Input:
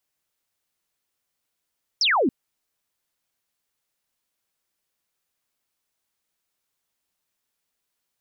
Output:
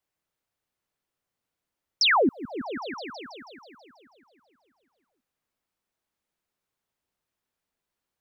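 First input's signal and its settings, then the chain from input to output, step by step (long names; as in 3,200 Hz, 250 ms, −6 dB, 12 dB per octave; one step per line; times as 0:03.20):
single falling chirp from 5,900 Hz, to 220 Hz, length 0.28 s sine, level −17 dB
echo whose low-pass opens from repeat to repeat 162 ms, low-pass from 200 Hz, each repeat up 1 octave, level −6 dB
one half of a high-frequency compander decoder only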